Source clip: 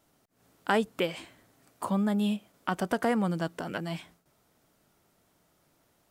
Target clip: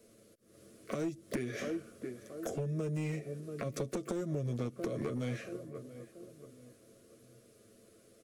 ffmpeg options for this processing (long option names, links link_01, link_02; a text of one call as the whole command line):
ffmpeg -i in.wav -filter_complex "[0:a]aecho=1:1:6.7:0.55,asetrate=32667,aresample=44100,asplit=2[link_01][link_02];[link_02]adelay=681,lowpass=frequency=1200:poles=1,volume=-19.5dB,asplit=2[link_03][link_04];[link_04]adelay=681,lowpass=frequency=1200:poles=1,volume=0.4,asplit=2[link_05][link_06];[link_06]adelay=681,lowpass=frequency=1200:poles=1,volume=0.4[link_07];[link_01][link_03][link_05][link_07]amix=inputs=4:normalize=0,acrossover=split=230|3000[link_08][link_09][link_10];[link_09]acompressor=threshold=-33dB:ratio=10[link_11];[link_08][link_11][link_10]amix=inputs=3:normalize=0,asplit=2[link_12][link_13];[link_13]asetrate=88200,aresample=44100,atempo=0.5,volume=-18dB[link_14];[link_12][link_14]amix=inputs=2:normalize=0,equalizer=frequency=430:width_type=o:width=2.4:gain=13,acompressor=threshold=-29dB:ratio=10,asuperstop=centerf=880:order=4:qfactor=1.7,highshelf=frequency=6100:gain=10,aeval=exprs='clip(val(0),-1,0.0376)':channel_layout=same,volume=-2.5dB" out.wav